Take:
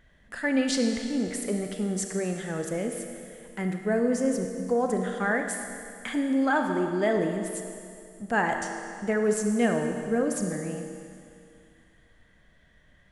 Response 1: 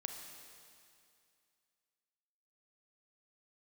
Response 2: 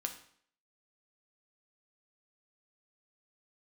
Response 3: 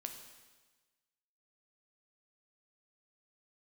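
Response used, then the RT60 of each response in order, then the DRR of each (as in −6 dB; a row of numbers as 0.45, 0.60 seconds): 1; 2.4, 0.60, 1.3 seconds; 4.0, 4.0, 4.5 decibels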